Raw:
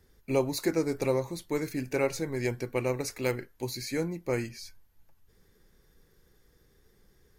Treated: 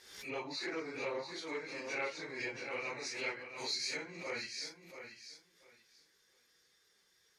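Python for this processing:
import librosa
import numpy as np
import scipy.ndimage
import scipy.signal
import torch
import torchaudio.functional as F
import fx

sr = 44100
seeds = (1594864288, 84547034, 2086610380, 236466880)

y = fx.phase_scramble(x, sr, seeds[0], window_ms=100)
y = np.clip(10.0 ** (20.0 / 20.0) * y, -1.0, 1.0) / 10.0 ** (20.0 / 20.0)
y = fx.env_lowpass_down(y, sr, base_hz=2300.0, full_db=-26.0)
y = scipy.signal.sosfilt(scipy.signal.butter(2, 4400.0, 'lowpass', fs=sr, output='sos'), y)
y = np.diff(y, prepend=0.0)
y = fx.echo_feedback(y, sr, ms=682, feedback_pct=19, wet_db=-9.5)
y = fx.pre_swell(y, sr, db_per_s=69.0)
y = y * 10.0 ** (10.5 / 20.0)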